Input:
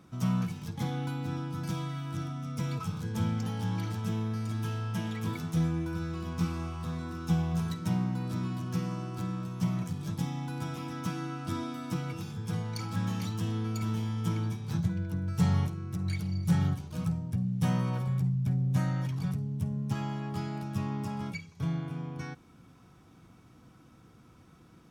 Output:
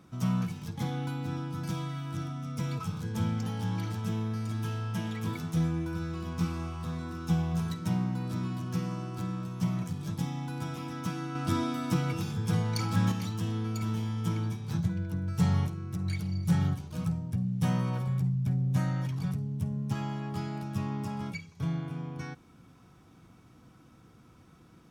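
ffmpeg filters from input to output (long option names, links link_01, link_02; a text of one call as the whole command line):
ffmpeg -i in.wav -filter_complex "[0:a]asettb=1/sr,asplit=3[link_01][link_02][link_03];[link_01]atrim=end=11.354[link_04];[link_02]atrim=start=11.35:end=13.12,asetpts=PTS-STARTPTS,afade=type=in:duration=0.004:curve=qsin,afade=type=out:start_time=1.766:duration=0.004:curve=qsin,acontrast=33[link_05];[link_03]atrim=start=13.116[link_06];[link_04][link_05]acrossfade=duration=0.004:curve1=hsin:curve2=qsin[link_07];[link_07][link_06]acrossfade=duration=0.004:curve1=qsin:curve2=hsin" out.wav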